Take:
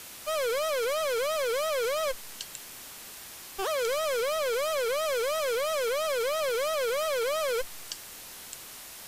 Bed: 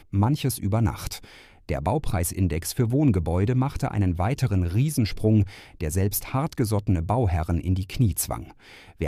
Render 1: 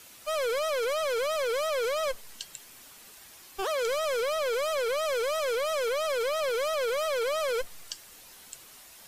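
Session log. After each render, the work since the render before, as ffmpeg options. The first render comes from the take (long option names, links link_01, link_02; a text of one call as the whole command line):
ffmpeg -i in.wav -af "afftdn=noise_reduction=8:noise_floor=-45" out.wav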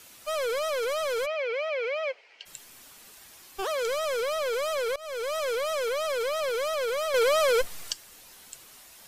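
ffmpeg -i in.wav -filter_complex "[0:a]asplit=3[link_01][link_02][link_03];[link_01]afade=type=out:start_time=1.25:duration=0.02[link_04];[link_02]highpass=frequency=430:width=0.5412,highpass=frequency=430:width=1.3066,equalizer=frequency=1100:width_type=q:width=4:gain=-9,equalizer=frequency=1600:width_type=q:width=4:gain=-4,equalizer=frequency=2300:width_type=q:width=4:gain=8,equalizer=frequency=3700:width_type=q:width=4:gain=-10,lowpass=frequency=3900:width=0.5412,lowpass=frequency=3900:width=1.3066,afade=type=in:start_time=1.25:duration=0.02,afade=type=out:start_time=2.45:duration=0.02[link_05];[link_03]afade=type=in:start_time=2.45:duration=0.02[link_06];[link_04][link_05][link_06]amix=inputs=3:normalize=0,asettb=1/sr,asplit=3[link_07][link_08][link_09];[link_07]atrim=end=7.144[link_10];[link_08]atrim=start=7.14:end=7.93,asetpts=PTS-STARTPTS,afade=type=in:duration=0.004:curve=qsin,afade=type=out:start_time=0.786:duration=0.004:curve=qsin,acontrast=61[link_11];[link_09]atrim=start=7.926[link_12];[link_10][link_11]acrossfade=duration=0.004:curve1=hsin:curve2=qsin[link_13];[link_13][link_12]acrossfade=duration=0.004:curve1=qsin:curve2=hsin,asplit=2[link_14][link_15];[link_14]atrim=end=4.96,asetpts=PTS-STARTPTS,afade=type=out:start_time=4.956:duration=0.004:curve=hsin:silence=0.0707946[link_16];[link_15]atrim=start=4.96,asetpts=PTS-STARTPTS,afade=type=in:duration=0.54:curve=qsin:silence=0.0707946[link_17];[link_16][link_17]concat=n=2:v=0:a=1" out.wav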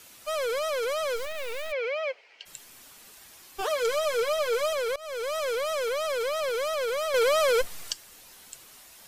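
ffmpeg -i in.wav -filter_complex "[0:a]asplit=3[link_01][link_02][link_03];[link_01]afade=type=out:start_time=1.15:duration=0.02[link_04];[link_02]acrusher=bits=4:dc=4:mix=0:aa=0.000001,afade=type=in:start_time=1.15:duration=0.02,afade=type=out:start_time=1.71:duration=0.02[link_05];[link_03]afade=type=in:start_time=1.71:duration=0.02[link_06];[link_04][link_05][link_06]amix=inputs=3:normalize=0,asettb=1/sr,asplit=3[link_07][link_08][link_09];[link_07]atrim=end=3.604[link_10];[link_08]atrim=start=3.6:end=4.73,asetpts=PTS-STARTPTS,afade=type=in:duration=0.004:curve=qsin,afade=type=out:start_time=1.126:duration=0.004:curve=qsin,aecho=1:1:6.6:0.65,atrim=end_sample=49833[link_11];[link_09]atrim=start=4.726[link_12];[link_10][link_11]acrossfade=duration=0.004:curve1=hsin:curve2=qsin[link_13];[link_13][link_12]acrossfade=duration=0.004:curve1=qsin:curve2=hsin" out.wav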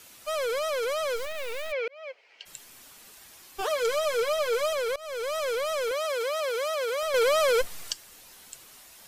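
ffmpeg -i in.wav -filter_complex "[0:a]asettb=1/sr,asplit=3[link_01][link_02][link_03];[link_01]atrim=end=5.914[link_04];[link_02]atrim=start=5.91:end=7.03,asetpts=PTS-STARTPTS,afade=type=in:duration=0.004:curve=qsin,afade=type=out:start_time=1.116:duration=0.004:curve=qsin,highpass=310[link_05];[link_03]atrim=start=7.026[link_06];[link_04][link_05]acrossfade=duration=0.004:curve1=hsin:curve2=qsin[link_07];[link_07][link_06]acrossfade=duration=0.004:curve1=qsin:curve2=hsin,asplit=2[link_08][link_09];[link_08]atrim=end=1.88,asetpts=PTS-STARTPTS,afade=type=out:start_time=1.876:duration=0.004:curve=hsin[link_10];[link_09]atrim=start=1.88,asetpts=PTS-STARTPTS,afade=type=in:duration=0.54[link_11];[link_10][link_11]concat=n=2:v=0:a=1" out.wav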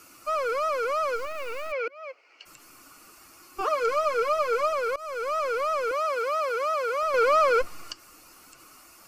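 ffmpeg -i in.wav -filter_complex "[0:a]acrossover=split=4800[link_01][link_02];[link_02]acompressor=threshold=-51dB:ratio=4:attack=1:release=60[link_03];[link_01][link_03]amix=inputs=2:normalize=0,superequalizer=6b=2.51:10b=2.51:11b=0.631:13b=0.316" out.wav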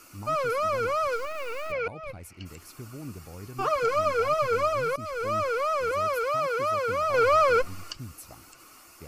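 ffmpeg -i in.wav -i bed.wav -filter_complex "[1:a]volume=-19.5dB[link_01];[0:a][link_01]amix=inputs=2:normalize=0" out.wav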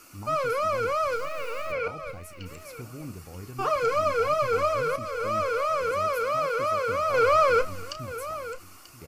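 ffmpeg -i in.wav -filter_complex "[0:a]asplit=2[link_01][link_02];[link_02]adelay=33,volume=-12dB[link_03];[link_01][link_03]amix=inputs=2:normalize=0,aecho=1:1:937:0.188" out.wav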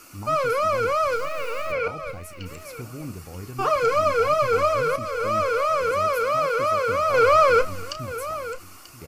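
ffmpeg -i in.wav -af "volume=4dB" out.wav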